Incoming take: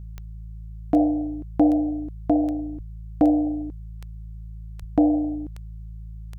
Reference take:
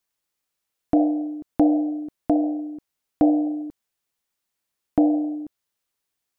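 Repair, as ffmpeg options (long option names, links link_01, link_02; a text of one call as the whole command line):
ffmpeg -i in.wav -filter_complex "[0:a]adeclick=threshold=4,bandreject=frequency=54.5:width_type=h:width=4,bandreject=frequency=109:width_type=h:width=4,bandreject=frequency=163.5:width_type=h:width=4,asplit=3[link_01][link_02][link_03];[link_01]afade=type=out:start_time=2.75:duration=0.02[link_04];[link_02]highpass=frequency=140:width=0.5412,highpass=frequency=140:width=1.3066,afade=type=in:start_time=2.75:duration=0.02,afade=type=out:start_time=2.87:duration=0.02[link_05];[link_03]afade=type=in:start_time=2.87:duration=0.02[link_06];[link_04][link_05][link_06]amix=inputs=3:normalize=0,asplit=3[link_07][link_08][link_09];[link_07]afade=type=out:start_time=4.79:duration=0.02[link_10];[link_08]highpass=frequency=140:width=0.5412,highpass=frequency=140:width=1.3066,afade=type=in:start_time=4.79:duration=0.02,afade=type=out:start_time=4.91:duration=0.02[link_11];[link_09]afade=type=in:start_time=4.91:duration=0.02[link_12];[link_10][link_11][link_12]amix=inputs=3:normalize=0" out.wav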